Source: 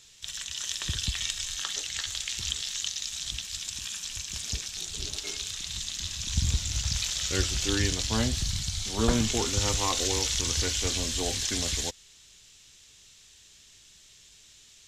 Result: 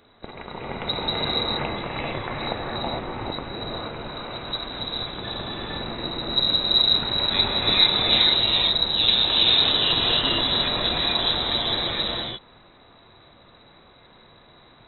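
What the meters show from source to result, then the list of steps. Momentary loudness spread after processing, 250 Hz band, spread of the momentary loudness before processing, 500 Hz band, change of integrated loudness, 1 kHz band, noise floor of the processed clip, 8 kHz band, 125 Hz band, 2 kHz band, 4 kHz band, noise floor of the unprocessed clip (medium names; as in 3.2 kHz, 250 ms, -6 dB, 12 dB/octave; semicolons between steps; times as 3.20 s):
15 LU, +2.5 dB, 8 LU, +6.0 dB, +8.0 dB, +10.0 dB, -53 dBFS, under -40 dB, -2.0 dB, +7.0 dB, +11.5 dB, -55 dBFS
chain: gated-style reverb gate 490 ms rising, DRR -3.5 dB; frequency inversion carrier 3.9 kHz; trim +2.5 dB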